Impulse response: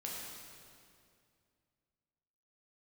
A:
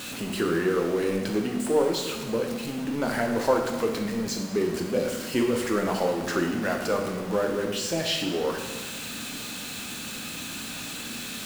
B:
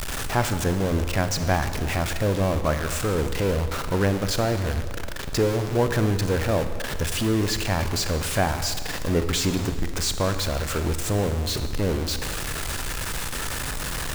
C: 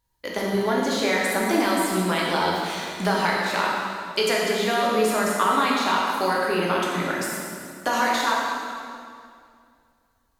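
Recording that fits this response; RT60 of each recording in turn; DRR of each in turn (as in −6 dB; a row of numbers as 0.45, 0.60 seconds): C; 1.3, 1.8, 2.3 seconds; 2.0, 8.5, −4.0 decibels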